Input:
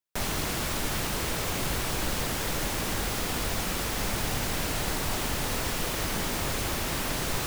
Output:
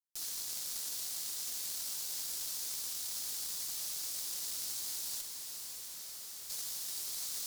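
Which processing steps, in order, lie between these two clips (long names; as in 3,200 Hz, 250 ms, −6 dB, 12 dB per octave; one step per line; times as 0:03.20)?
inverse Chebyshev high-pass filter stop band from 1,700 Hz, stop band 50 dB
0:05.21–0:06.50: hard clipping −39 dBFS, distortion −13 dB
harmonic generator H 3 −20 dB, 4 −16 dB, 6 −26 dB, 7 −28 dB, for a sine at −21.5 dBFS
on a send: feedback delay with all-pass diffusion 538 ms, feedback 49%, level −7.5 dB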